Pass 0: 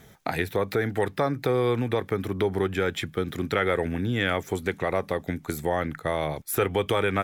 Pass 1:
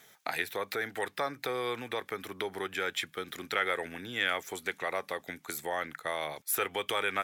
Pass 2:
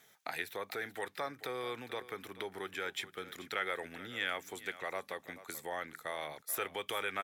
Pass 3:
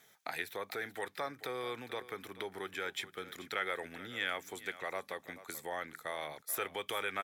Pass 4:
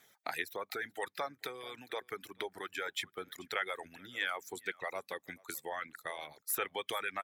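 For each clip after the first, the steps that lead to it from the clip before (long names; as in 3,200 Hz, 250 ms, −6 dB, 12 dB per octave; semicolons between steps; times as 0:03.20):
high-pass filter 1,500 Hz 6 dB per octave
single-tap delay 434 ms −15.5 dB; level −6 dB
notch filter 2,800 Hz, Q 26
reverb reduction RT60 1.6 s; harmonic and percussive parts rebalanced harmonic −8 dB; level +2.5 dB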